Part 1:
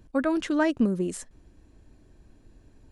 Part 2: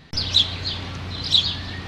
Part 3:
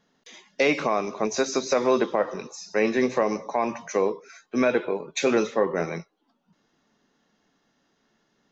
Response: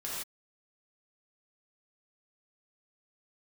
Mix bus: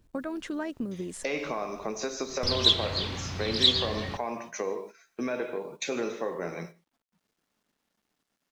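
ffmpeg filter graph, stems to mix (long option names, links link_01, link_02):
-filter_complex "[0:a]tremolo=f=86:d=0.261,volume=1.5dB[link_01];[1:a]adelay=2300,volume=-4.5dB,asplit=2[link_02][link_03];[link_03]volume=-20.5dB[link_04];[2:a]adelay=650,volume=-2dB,asplit=2[link_05][link_06];[link_06]volume=-16.5dB[link_07];[link_01][link_05]amix=inputs=2:normalize=0,acompressor=threshold=-34dB:ratio=3,volume=0dB[link_08];[3:a]atrim=start_sample=2205[link_09];[link_04][link_07]amix=inputs=2:normalize=0[link_10];[link_10][link_09]afir=irnorm=-1:irlink=0[link_11];[link_02][link_08][link_11]amix=inputs=3:normalize=0,acrusher=bits=10:mix=0:aa=0.000001,agate=range=-10dB:threshold=-43dB:ratio=16:detection=peak"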